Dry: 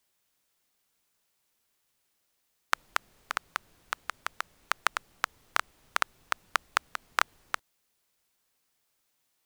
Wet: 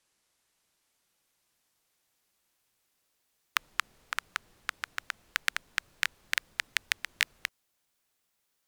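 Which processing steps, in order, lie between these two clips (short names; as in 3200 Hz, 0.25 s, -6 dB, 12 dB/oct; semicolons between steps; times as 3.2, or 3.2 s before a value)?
speed glide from 54% -> 164%; Doppler distortion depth 0.21 ms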